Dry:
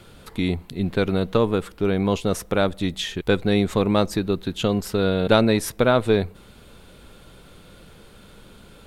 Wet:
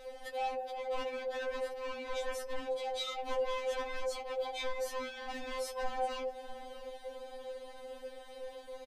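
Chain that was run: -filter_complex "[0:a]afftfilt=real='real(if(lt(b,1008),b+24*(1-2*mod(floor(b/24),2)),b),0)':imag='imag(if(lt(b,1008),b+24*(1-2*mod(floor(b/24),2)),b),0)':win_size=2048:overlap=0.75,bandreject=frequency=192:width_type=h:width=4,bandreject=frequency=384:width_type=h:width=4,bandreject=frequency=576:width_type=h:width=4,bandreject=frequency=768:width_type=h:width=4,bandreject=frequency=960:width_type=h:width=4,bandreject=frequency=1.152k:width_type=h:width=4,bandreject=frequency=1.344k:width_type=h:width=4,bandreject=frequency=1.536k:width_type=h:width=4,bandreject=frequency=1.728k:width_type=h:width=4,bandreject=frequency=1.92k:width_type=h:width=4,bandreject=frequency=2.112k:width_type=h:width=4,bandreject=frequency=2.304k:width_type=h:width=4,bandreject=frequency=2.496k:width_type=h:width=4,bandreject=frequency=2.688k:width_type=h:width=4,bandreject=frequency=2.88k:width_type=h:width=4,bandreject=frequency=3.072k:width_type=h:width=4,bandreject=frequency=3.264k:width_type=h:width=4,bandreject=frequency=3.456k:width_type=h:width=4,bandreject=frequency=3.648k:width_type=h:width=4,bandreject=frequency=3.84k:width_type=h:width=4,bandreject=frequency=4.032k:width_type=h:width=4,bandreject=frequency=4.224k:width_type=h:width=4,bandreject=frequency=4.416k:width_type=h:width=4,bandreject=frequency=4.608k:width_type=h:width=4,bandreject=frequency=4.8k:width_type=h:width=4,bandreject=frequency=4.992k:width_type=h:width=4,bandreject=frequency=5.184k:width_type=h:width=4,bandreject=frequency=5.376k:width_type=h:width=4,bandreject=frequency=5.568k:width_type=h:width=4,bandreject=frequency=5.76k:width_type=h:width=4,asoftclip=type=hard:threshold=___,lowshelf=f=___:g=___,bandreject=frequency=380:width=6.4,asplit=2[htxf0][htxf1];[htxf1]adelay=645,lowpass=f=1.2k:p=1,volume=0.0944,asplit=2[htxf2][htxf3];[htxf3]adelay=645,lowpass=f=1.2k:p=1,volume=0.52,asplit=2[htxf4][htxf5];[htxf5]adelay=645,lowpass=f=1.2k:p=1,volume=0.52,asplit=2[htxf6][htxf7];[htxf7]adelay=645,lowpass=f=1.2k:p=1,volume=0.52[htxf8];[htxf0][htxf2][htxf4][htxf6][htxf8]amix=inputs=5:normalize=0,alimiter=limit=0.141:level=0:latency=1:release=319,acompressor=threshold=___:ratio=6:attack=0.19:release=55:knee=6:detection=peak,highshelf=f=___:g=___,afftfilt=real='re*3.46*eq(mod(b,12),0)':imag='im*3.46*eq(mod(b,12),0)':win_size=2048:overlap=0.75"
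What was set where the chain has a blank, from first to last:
0.0794, 110, 9, 0.0282, 8.2k, -10.5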